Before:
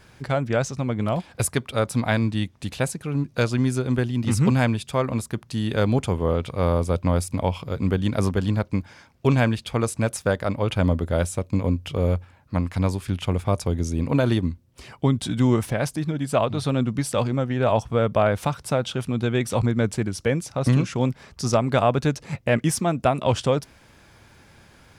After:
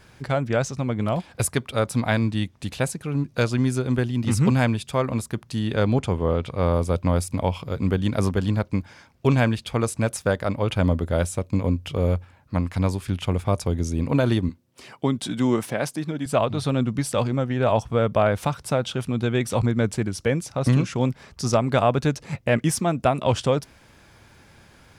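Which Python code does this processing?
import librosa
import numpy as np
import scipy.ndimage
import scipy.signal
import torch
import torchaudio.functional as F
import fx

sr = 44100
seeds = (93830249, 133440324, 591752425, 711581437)

y = fx.high_shelf(x, sr, hz=9200.0, db=-10.0, at=(5.59, 6.74))
y = fx.highpass(y, sr, hz=180.0, slope=12, at=(14.49, 16.26))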